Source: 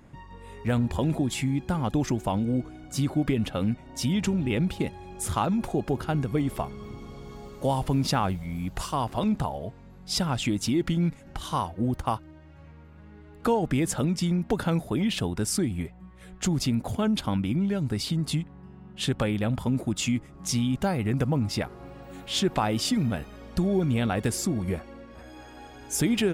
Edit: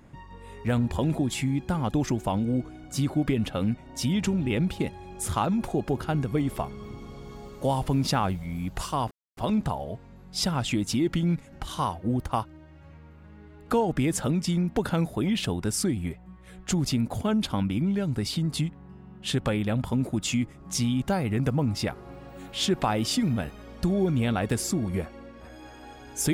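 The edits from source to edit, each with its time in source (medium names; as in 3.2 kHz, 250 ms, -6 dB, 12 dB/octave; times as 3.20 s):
9.11 s: insert silence 0.26 s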